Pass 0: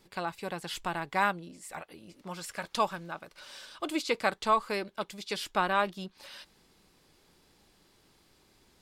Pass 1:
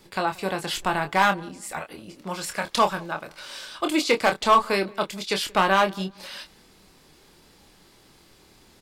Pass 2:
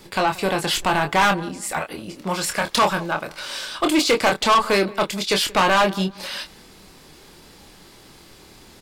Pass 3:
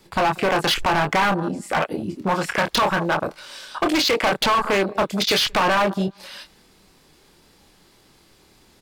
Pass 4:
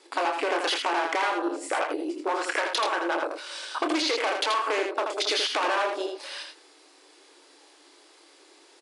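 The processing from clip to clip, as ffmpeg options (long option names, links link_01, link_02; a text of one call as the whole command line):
ffmpeg -i in.wav -filter_complex "[0:a]acrossover=split=430[link_01][link_02];[link_02]volume=21.5dB,asoftclip=hard,volume=-21.5dB[link_03];[link_01][link_03]amix=inputs=2:normalize=0,asplit=2[link_04][link_05];[link_05]adelay=26,volume=-7dB[link_06];[link_04][link_06]amix=inputs=2:normalize=0,asplit=2[link_07][link_08];[link_08]adelay=179,lowpass=frequency=1400:poles=1,volume=-23dB,asplit=2[link_09][link_10];[link_10]adelay=179,lowpass=frequency=1400:poles=1,volume=0.29[link_11];[link_07][link_09][link_11]amix=inputs=3:normalize=0,volume=8.5dB" out.wav
ffmpeg -i in.wav -af "asoftclip=type=tanh:threshold=-20dB,volume=8dB" out.wav
ffmpeg -i in.wav -filter_complex "[0:a]acrossover=split=520|6000[link_01][link_02][link_03];[link_01]acompressor=threshold=-31dB:ratio=4[link_04];[link_02]acompressor=threshold=-23dB:ratio=4[link_05];[link_03]acompressor=threshold=-33dB:ratio=4[link_06];[link_04][link_05][link_06]amix=inputs=3:normalize=0,afwtdn=0.0355,volume=24dB,asoftclip=hard,volume=-24dB,volume=8.5dB" out.wav
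ffmpeg -i in.wav -af "afftfilt=real='re*between(b*sr/4096,270,11000)':imag='im*between(b*sr/4096,270,11000)':win_size=4096:overlap=0.75,acompressor=threshold=-25dB:ratio=6,aecho=1:1:81:0.562" out.wav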